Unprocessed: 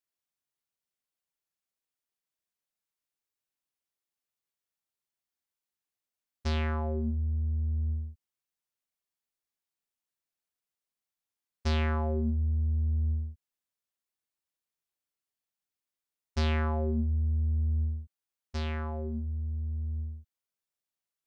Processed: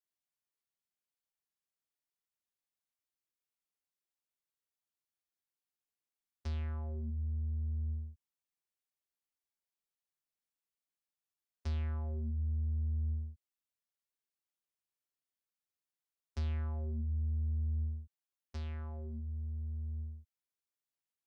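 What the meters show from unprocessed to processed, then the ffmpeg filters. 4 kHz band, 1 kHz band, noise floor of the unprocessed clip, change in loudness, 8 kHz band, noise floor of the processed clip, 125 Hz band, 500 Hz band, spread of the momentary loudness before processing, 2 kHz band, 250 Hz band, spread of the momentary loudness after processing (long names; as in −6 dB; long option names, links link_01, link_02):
−16.5 dB, −17.0 dB, below −85 dBFS, −7.0 dB, can't be measured, below −85 dBFS, −6.0 dB, −16.0 dB, 9 LU, −17.5 dB, −12.5 dB, 11 LU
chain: -filter_complex "[0:a]acrossover=split=150[link_01][link_02];[link_02]acompressor=threshold=-45dB:ratio=3[link_03];[link_01][link_03]amix=inputs=2:normalize=0,volume=-6dB"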